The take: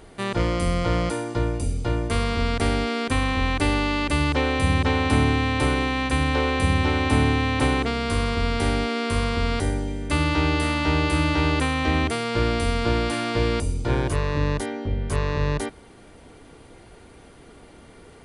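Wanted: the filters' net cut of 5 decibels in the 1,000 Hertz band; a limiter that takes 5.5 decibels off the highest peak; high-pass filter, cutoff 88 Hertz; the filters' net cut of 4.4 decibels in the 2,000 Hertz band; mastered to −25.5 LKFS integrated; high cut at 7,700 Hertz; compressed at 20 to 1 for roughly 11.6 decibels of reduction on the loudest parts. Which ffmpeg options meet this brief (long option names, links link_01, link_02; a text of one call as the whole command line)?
ffmpeg -i in.wav -af "highpass=88,lowpass=7700,equalizer=frequency=1000:width_type=o:gain=-5.5,equalizer=frequency=2000:width_type=o:gain=-4,acompressor=threshold=-28dB:ratio=20,volume=8.5dB,alimiter=limit=-16dB:level=0:latency=1" out.wav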